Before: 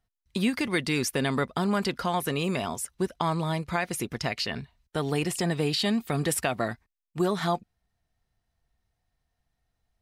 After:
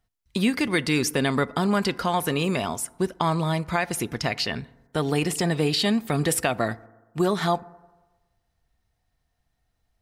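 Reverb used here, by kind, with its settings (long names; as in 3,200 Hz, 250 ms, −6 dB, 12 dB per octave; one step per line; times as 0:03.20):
feedback delay network reverb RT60 1.2 s, low-frequency decay 0.9×, high-frequency decay 0.3×, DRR 18.5 dB
level +3.5 dB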